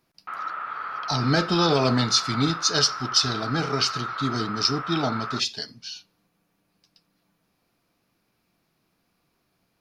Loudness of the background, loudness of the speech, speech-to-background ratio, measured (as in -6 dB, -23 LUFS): -32.0 LUFS, -23.5 LUFS, 8.5 dB